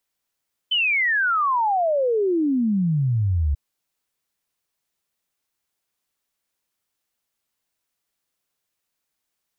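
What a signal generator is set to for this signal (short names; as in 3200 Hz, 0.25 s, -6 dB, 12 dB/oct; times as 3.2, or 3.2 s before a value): log sweep 3100 Hz -> 68 Hz 2.84 s -17.5 dBFS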